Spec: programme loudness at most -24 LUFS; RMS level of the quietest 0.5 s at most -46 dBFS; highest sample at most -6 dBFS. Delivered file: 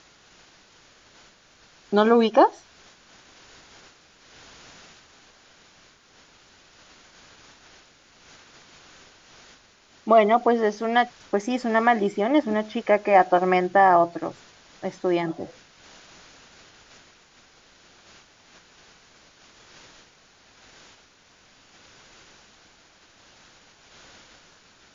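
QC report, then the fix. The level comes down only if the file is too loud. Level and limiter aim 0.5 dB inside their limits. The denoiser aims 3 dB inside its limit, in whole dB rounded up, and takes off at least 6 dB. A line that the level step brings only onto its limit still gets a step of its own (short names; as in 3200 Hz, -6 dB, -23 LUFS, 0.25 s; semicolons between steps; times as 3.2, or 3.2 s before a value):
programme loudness -21.5 LUFS: fail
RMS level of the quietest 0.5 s -57 dBFS: OK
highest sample -5.0 dBFS: fail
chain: gain -3 dB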